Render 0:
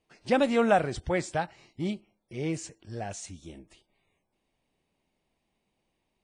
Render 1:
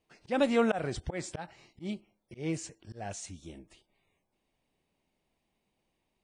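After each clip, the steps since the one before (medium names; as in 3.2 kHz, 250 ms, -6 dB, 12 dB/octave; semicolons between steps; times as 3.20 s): slow attack 146 ms; trim -1.5 dB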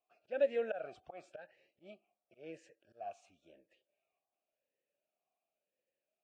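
talking filter a-e 0.94 Hz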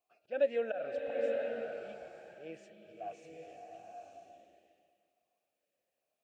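swelling reverb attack 930 ms, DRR 1 dB; trim +1.5 dB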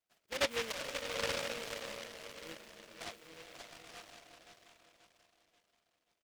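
feedback delay 534 ms, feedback 42%, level -8 dB; delay time shaken by noise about 2.1 kHz, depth 0.29 ms; trim -4 dB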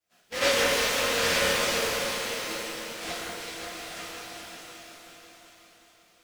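echo whose repeats swap between lows and highs 188 ms, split 2 kHz, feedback 74%, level -2.5 dB; pitch-shifted reverb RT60 1.1 s, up +12 st, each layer -8 dB, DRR -10.5 dB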